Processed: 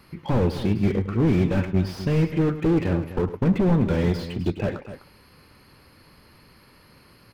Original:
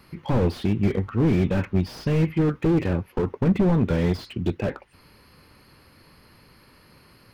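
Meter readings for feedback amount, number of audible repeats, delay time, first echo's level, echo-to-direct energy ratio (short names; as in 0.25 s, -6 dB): no steady repeat, 2, 0.105 s, -13.5 dB, -10.0 dB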